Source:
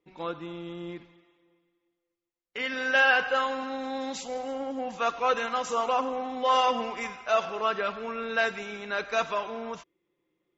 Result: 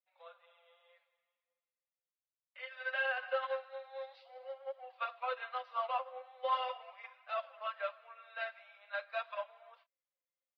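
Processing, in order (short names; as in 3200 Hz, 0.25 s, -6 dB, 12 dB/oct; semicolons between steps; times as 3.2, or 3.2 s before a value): elliptic low-pass 4500 Hz, stop band 40 dB; high shelf 2400 Hz -6.5 dB; doubler 28 ms -11.5 dB; flange 0.41 Hz, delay 2.2 ms, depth 10 ms, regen -4%; Chebyshev high-pass 520 Hz, order 8; bell 900 Hz -6.5 dB 0.32 oct; limiter -26.5 dBFS, peak gain reduction 10.5 dB; upward expander 2.5:1, over -41 dBFS; gain +3 dB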